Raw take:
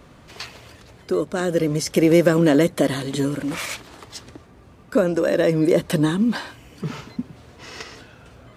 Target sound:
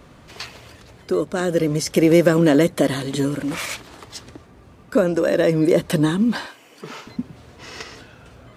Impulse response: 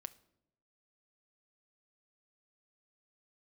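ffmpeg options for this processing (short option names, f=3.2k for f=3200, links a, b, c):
-filter_complex "[0:a]asettb=1/sr,asplit=3[a][b][c];[a]atrim=end=6.464[d];[b]atrim=start=6.46:end=7.07,asetpts=PTS-STARTPTS,afade=t=in:d=0.004:c=qsin,afade=t=out:st=0.606:d=0.004:c=qsin,highpass=380[e];[c]atrim=start=7.066[f];[d][e]acrossfade=d=0.004:c1=hsin:c2=qsin[g];[g][f]acrossfade=d=0.004:c1=qsin:c2=hsin,volume=1dB"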